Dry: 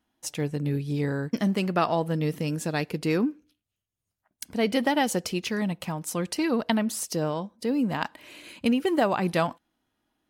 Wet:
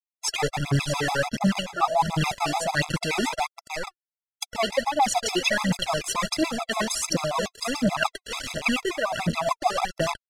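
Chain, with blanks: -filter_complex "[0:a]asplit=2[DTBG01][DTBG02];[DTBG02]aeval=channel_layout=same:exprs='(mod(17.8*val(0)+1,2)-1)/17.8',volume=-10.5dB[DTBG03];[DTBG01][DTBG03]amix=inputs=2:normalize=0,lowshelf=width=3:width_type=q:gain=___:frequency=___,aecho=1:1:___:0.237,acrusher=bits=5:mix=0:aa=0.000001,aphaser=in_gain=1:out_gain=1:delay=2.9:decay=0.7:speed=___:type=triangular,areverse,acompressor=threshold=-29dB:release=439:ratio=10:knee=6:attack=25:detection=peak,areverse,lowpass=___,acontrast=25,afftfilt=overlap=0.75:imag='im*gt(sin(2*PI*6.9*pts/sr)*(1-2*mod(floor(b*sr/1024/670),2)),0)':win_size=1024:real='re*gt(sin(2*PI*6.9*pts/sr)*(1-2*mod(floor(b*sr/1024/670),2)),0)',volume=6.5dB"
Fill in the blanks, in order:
-6.5, 530, 640, 1.4, 7500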